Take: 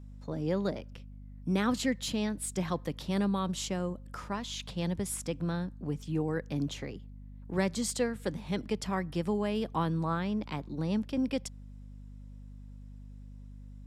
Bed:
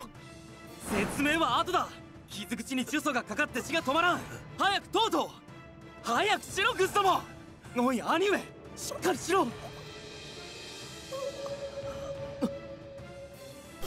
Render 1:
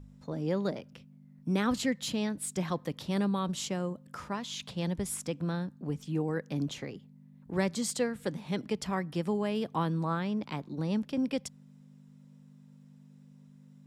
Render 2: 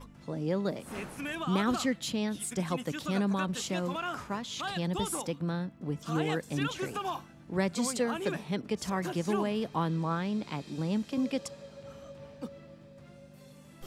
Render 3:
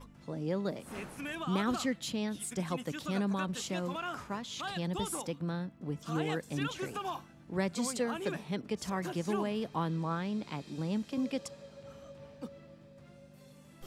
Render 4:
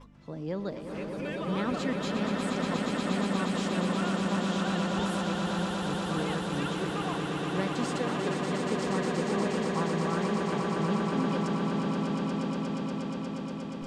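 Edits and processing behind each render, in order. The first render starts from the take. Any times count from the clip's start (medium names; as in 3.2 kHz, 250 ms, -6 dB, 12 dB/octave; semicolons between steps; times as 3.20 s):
de-hum 50 Hz, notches 2
add bed -9.5 dB
trim -3 dB
distance through air 71 m; echo with a slow build-up 119 ms, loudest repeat 8, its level -6 dB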